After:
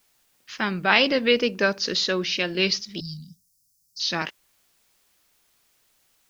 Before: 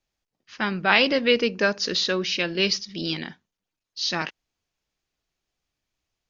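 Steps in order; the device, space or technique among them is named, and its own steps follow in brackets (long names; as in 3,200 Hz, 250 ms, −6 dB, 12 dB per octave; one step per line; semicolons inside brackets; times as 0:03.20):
noise-reduction cassette on a plain deck (one half of a high-frequency compander encoder only; tape wow and flutter; white noise bed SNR 39 dB)
0:03.00–0:04.00: Chebyshev band-stop filter 180–5,100 Hz, order 4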